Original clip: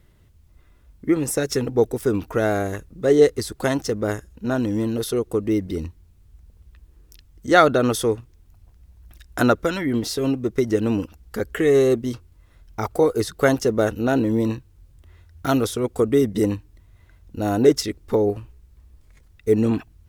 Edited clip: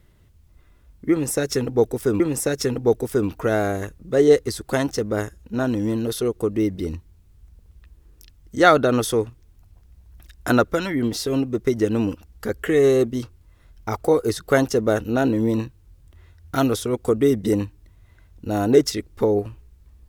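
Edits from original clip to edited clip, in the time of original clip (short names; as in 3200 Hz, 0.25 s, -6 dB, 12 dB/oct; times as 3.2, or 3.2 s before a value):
1.11–2.2 loop, 2 plays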